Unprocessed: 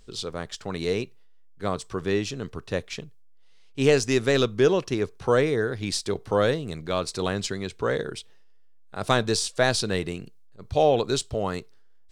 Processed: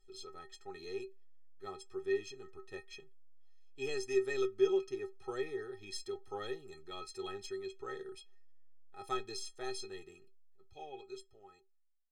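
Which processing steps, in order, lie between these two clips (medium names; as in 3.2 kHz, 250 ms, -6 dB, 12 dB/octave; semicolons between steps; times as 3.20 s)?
fade out at the end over 3.38 s; inharmonic resonator 380 Hz, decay 0.2 s, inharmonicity 0.03; trim -2 dB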